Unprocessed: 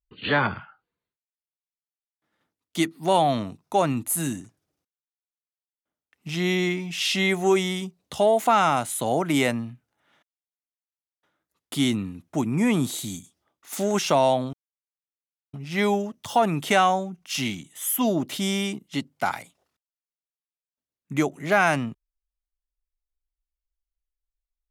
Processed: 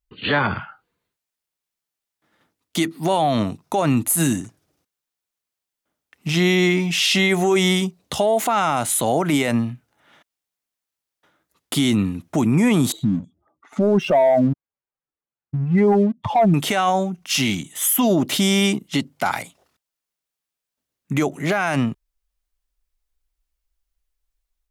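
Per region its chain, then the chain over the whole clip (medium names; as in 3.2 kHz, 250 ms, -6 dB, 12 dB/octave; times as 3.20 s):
12.92–16.54 s: spectral contrast enhancement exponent 2.1 + low-pass 1.5 kHz + waveshaping leveller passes 1
whole clip: level rider gain up to 6 dB; loudness maximiser +13.5 dB; trim -9 dB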